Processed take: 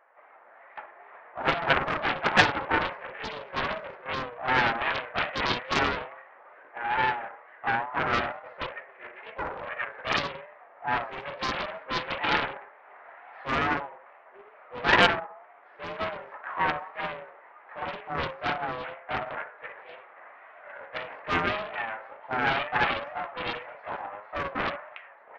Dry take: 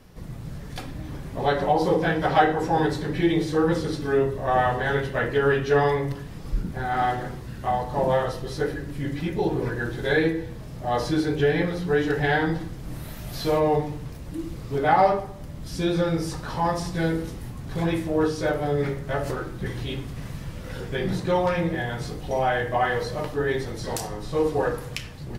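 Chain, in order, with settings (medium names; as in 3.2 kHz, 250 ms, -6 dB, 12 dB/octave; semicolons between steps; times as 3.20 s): mistuned SSB +93 Hz 580–2000 Hz; wow and flutter 82 cents; loudspeaker Doppler distortion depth 0.84 ms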